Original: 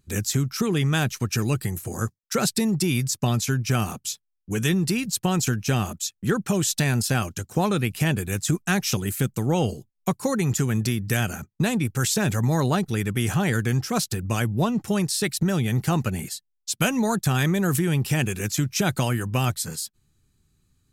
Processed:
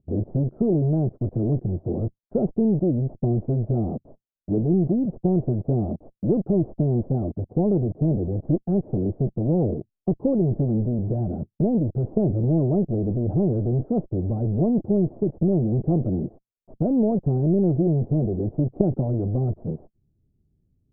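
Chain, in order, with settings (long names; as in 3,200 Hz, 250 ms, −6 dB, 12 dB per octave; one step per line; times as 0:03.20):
one-sided soft clipper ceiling −25.5 dBFS
in parallel at −4 dB: log-companded quantiser 2 bits
on the sum: elliptic low-pass filter 660 Hz, stop band 80 dB
dynamic equaliser 340 Hz, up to +5 dB, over −39 dBFS, Q 1.8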